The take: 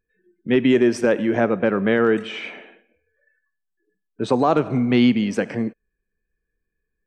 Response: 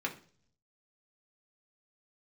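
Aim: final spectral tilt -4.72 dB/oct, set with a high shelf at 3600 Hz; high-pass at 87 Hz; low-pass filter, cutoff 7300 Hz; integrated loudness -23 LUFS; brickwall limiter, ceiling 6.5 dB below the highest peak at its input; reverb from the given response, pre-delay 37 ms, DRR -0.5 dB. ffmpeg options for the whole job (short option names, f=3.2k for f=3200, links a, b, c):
-filter_complex "[0:a]highpass=87,lowpass=7.3k,highshelf=f=3.6k:g=7,alimiter=limit=-11.5dB:level=0:latency=1,asplit=2[a][b];[1:a]atrim=start_sample=2205,adelay=37[c];[b][c]afir=irnorm=-1:irlink=0,volume=-4dB[d];[a][d]amix=inputs=2:normalize=0,volume=-4dB"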